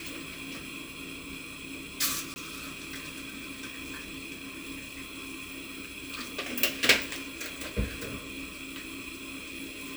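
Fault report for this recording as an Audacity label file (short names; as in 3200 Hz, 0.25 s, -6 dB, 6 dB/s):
2.340000	2.360000	gap 20 ms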